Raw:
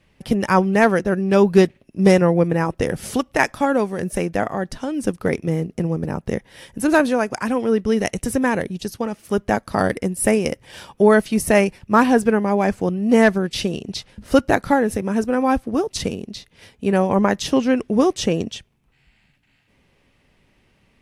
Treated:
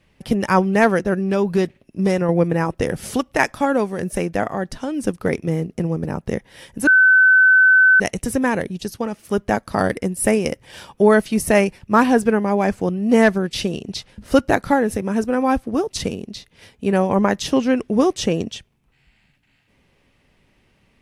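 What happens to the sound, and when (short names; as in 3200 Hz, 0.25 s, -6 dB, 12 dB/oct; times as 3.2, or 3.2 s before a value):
1.16–2.29 compressor 2:1, threshold -17 dBFS
6.87–8 bleep 1520 Hz -8.5 dBFS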